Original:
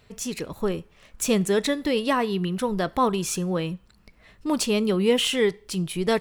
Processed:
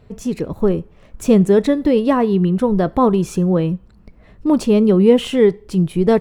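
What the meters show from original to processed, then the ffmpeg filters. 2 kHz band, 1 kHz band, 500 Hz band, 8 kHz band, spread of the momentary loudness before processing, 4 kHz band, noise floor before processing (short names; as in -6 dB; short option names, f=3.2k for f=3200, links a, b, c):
-1.5 dB, +4.5 dB, +9.0 dB, -6.0 dB, 10 LU, -4.0 dB, -58 dBFS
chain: -af "tiltshelf=f=1.2k:g=9,volume=2.5dB"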